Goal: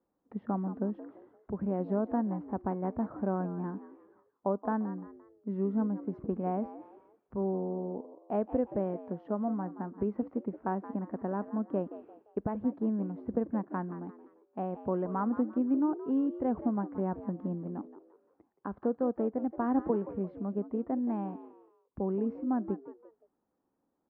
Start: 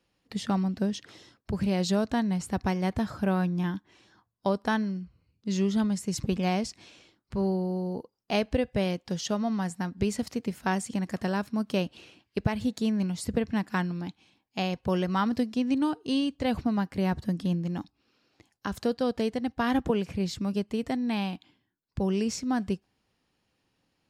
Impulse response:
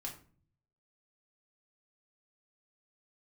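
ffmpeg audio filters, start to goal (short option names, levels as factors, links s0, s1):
-filter_complex "[0:a]lowpass=f=1200:w=0.5412,lowpass=f=1200:w=1.3066,lowshelf=f=180:t=q:w=1.5:g=-8.5,asplit=2[s0][s1];[s1]asplit=3[s2][s3][s4];[s2]adelay=173,afreqshift=75,volume=0.2[s5];[s3]adelay=346,afreqshift=150,volume=0.0676[s6];[s4]adelay=519,afreqshift=225,volume=0.0232[s7];[s5][s6][s7]amix=inputs=3:normalize=0[s8];[s0][s8]amix=inputs=2:normalize=0,volume=0.631"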